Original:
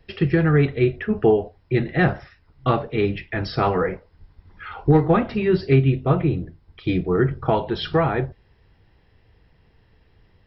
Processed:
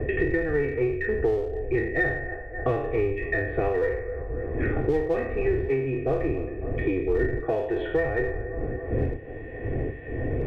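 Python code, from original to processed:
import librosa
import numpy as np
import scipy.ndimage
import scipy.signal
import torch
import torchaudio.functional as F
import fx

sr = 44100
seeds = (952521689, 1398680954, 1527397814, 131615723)

p1 = fx.spec_trails(x, sr, decay_s=0.61)
p2 = fx.dmg_wind(p1, sr, seeds[0], corner_hz=100.0, level_db=-22.0)
p3 = fx.formant_cascade(p2, sr, vowel='e')
p4 = fx.low_shelf(p3, sr, hz=150.0, db=5.0)
p5 = p4 + 0.88 * np.pad(p4, (int(2.7 * sr / 1000.0), 0))[:len(p4)]
p6 = fx.echo_wet_bandpass(p5, sr, ms=272, feedback_pct=39, hz=800.0, wet_db=-16.5)
p7 = fx.clip_asym(p6, sr, top_db=-31.5, bottom_db=-14.5)
p8 = p6 + (p7 * librosa.db_to_amplitude(-9.0))
y = fx.band_squash(p8, sr, depth_pct=100)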